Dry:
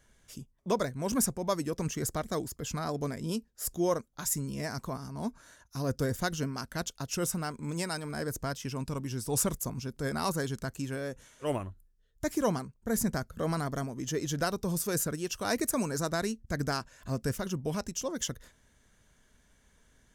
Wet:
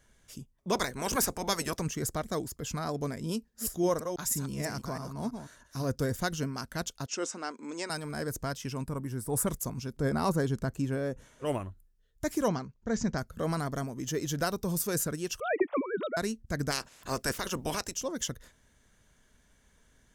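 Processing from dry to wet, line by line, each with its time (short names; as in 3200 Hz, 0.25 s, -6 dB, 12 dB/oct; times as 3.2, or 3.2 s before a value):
0.72–1.79 spectral limiter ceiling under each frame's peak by 19 dB
3.34–5.95 reverse delay 0.164 s, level -7 dB
7.06–7.9 elliptic band-pass 270–7100 Hz
8.85–9.47 band shelf 4100 Hz -11 dB
9.97–11.45 tilt shelf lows +5 dB, about 1400 Hz
12.48–13.18 steep low-pass 6700 Hz 48 dB/oct
13.85–14.85 bell 15000 Hz +8.5 dB 0.34 oct
15.4–16.17 sine-wave speech
16.7–17.93 spectral limiter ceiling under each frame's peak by 20 dB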